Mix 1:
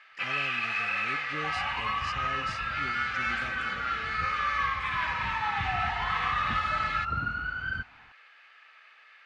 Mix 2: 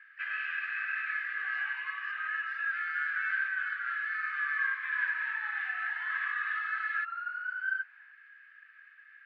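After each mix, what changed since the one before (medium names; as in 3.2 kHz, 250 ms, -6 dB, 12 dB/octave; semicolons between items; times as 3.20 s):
speech: add tilt EQ -3.5 dB/octave; master: add ladder band-pass 1.7 kHz, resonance 85%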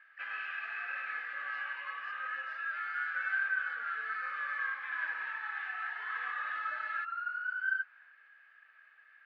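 first sound: remove resonant high-pass 1.7 kHz, resonance Q 1.9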